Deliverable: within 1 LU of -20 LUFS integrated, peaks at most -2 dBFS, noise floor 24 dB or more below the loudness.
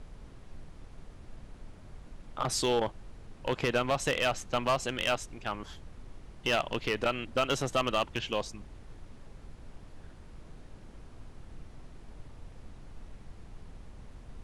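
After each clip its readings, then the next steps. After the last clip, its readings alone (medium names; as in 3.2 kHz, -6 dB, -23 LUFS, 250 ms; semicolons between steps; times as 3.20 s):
clipped samples 0.5%; clipping level -21.0 dBFS; noise floor -51 dBFS; noise floor target -55 dBFS; loudness -31.0 LUFS; peak level -21.0 dBFS; loudness target -20.0 LUFS
-> clip repair -21 dBFS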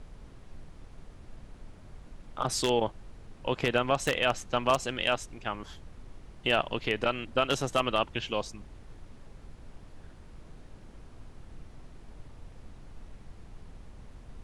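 clipped samples 0.0%; noise floor -51 dBFS; noise floor target -54 dBFS
-> noise print and reduce 6 dB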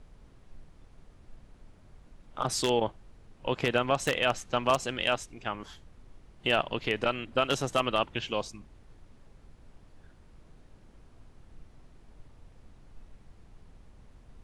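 noise floor -57 dBFS; loudness -29.5 LUFS; peak level -12.0 dBFS; loudness target -20.0 LUFS
-> trim +9.5 dB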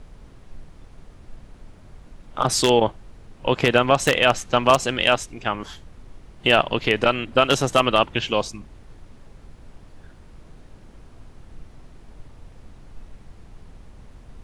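loudness -20.0 LUFS; peak level -2.5 dBFS; noise floor -48 dBFS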